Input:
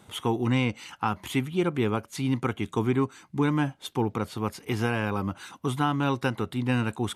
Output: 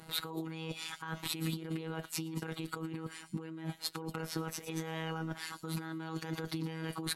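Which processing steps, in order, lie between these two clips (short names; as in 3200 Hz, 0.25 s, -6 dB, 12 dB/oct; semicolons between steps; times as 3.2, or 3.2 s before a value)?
wow and flutter 27 cents; robotiser 161 Hz; thin delay 0.114 s, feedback 49%, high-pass 4900 Hz, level -9 dB; negative-ratio compressor -36 dBFS, ratio -1; formant shift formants +3 st; gain -3 dB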